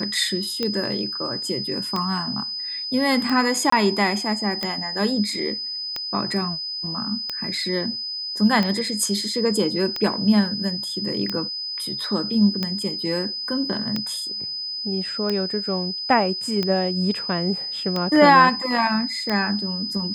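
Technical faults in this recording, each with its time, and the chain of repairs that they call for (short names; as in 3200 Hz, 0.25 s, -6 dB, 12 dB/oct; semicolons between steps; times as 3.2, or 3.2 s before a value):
tick 45 rpm -11 dBFS
tone 5000 Hz -27 dBFS
3.7–3.72 gap 24 ms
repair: de-click; notch 5000 Hz, Q 30; interpolate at 3.7, 24 ms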